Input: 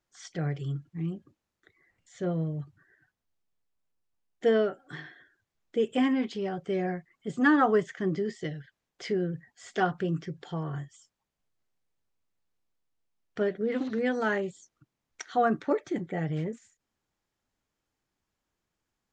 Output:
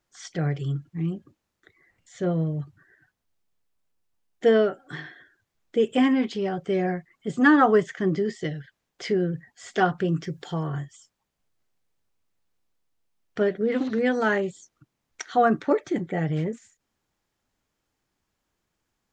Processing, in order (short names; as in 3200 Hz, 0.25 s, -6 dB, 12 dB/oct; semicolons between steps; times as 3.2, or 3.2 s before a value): 10.22–10.67 high shelf 6400 Hz +11 dB; gain +5 dB